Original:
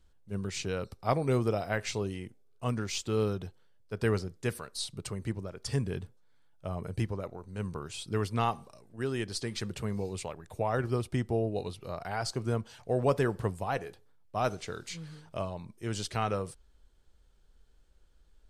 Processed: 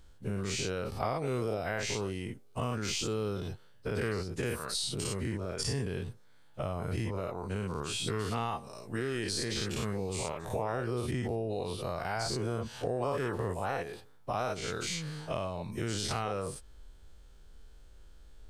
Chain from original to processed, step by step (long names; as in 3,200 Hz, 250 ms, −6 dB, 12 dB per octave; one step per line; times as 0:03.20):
every bin's largest magnitude spread in time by 120 ms
downward compressor 4 to 1, threshold −36 dBFS, peak gain reduction 15.5 dB
level +4 dB